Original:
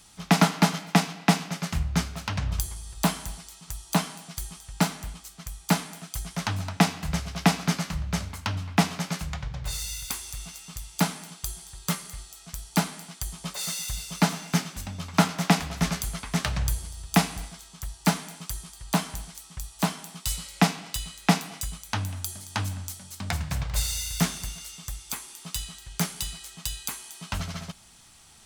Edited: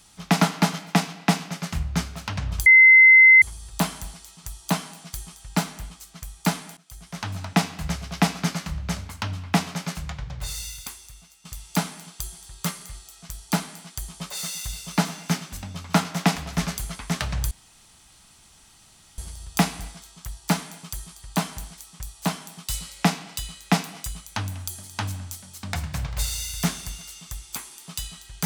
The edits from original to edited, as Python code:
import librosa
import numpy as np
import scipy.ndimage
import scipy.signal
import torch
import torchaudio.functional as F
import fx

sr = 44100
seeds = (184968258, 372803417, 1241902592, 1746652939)

y = fx.edit(x, sr, fx.insert_tone(at_s=2.66, length_s=0.76, hz=2060.0, db=-8.0),
    fx.fade_in_from(start_s=6.01, length_s=0.7, floor_db=-20.0),
    fx.fade_out_to(start_s=9.86, length_s=0.83, curve='qua', floor_db=-12.5),
    fx.insert_room_tone(at_s=16.75, length_s=1.67), tone=tone)